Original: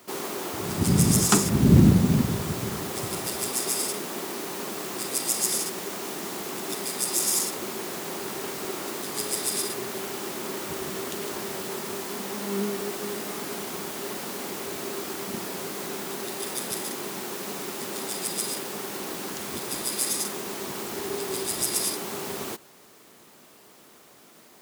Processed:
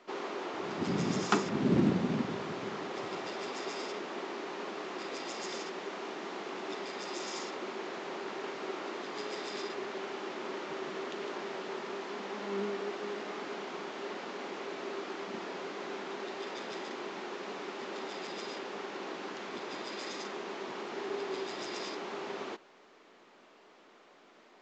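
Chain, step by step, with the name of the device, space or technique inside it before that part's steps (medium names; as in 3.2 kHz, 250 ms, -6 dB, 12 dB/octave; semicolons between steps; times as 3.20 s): telephone (band-pass 290–3100 Hz; trim -3.5 dB; µ-law 128 kbps 16 kHz)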